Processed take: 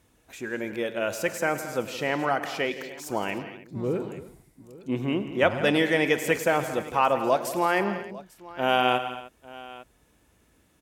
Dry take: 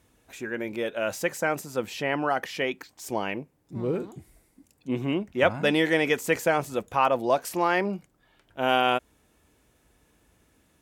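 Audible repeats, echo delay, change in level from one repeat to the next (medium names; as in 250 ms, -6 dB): 6, 48 ms, no regular repeats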